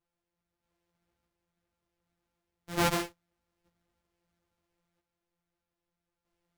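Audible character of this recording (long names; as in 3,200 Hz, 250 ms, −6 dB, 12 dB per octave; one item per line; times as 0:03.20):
a buzz of ramps at a fixed pitch in blocks of 256 samples
sample-and-hold tremolo 1.6 Hz
a shimmering, thickened sound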